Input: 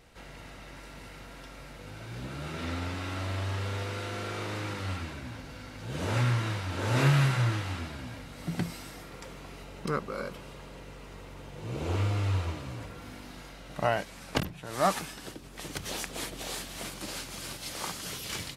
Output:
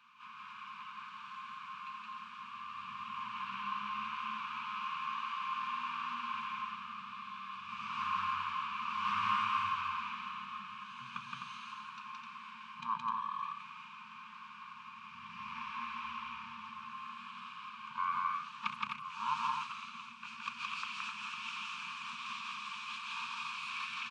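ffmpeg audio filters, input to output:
-filter_complex "[0:a]bandreject=f=50:t=h:w=6,bandreject=f=100:t=h:w=6,bandreject=f=150:t=h:w=6,bandreject=f=200:t=h:w=6,bandreject=f=250:t=h:w=6,asetrate=33957,aresample=44100,acrossover=split=160 7900:gain=0.112 1 0.178[s0][s1][s2];[s0][s1][s2]amix=inputs=3:normalize=0,asplit=2[s3][s4];[s4]acompressor=threshold=0.00562:ratio=6,volume=1.06[s5];[s3][s5]amix=inputs=2:normalize=0,afftfilt=real='re*(1-between(b*sr/4096,240,890))':imag='im*(1-between(b*sr/4096,240,890))':win_size=4096:overlap=0.75,asplit=3[s6][s7][s8];[s6]bandpass=f=730:t=q:w=8,volume=1[s9];[s7]bandpass=f=1090:t=q:w=8,volume=0.501[s10];[s8]bandpass=f=2440:t=q:w=8,volume=0.355[s11];[s9][s10][s11]amix=inputs=3:normalize=0,asplit=2[s12][s13];[s13]aecho=0:1:169.1|256.6:0.891|0.562[s14];[s12][s14]amix=inputs=2:normalize=0,volume=2.51"

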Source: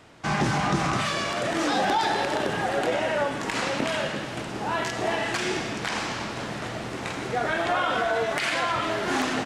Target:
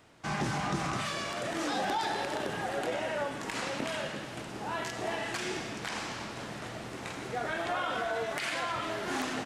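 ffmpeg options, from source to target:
-af "highshelf=f=11000:g=9,volume=0.398"

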